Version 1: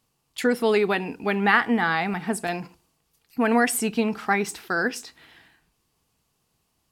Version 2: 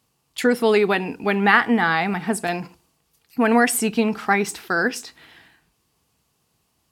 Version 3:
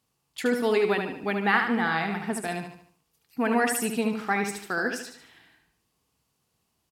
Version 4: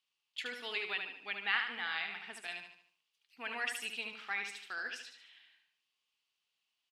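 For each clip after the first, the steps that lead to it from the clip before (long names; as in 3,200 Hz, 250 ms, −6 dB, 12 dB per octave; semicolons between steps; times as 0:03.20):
high-pass filter 45 Hz; level +3.5 dB
repeating echo 74 ms, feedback 42%, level −6 dB; level −7.5 dB
resonant band-pass 3,000 Hz, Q 2.3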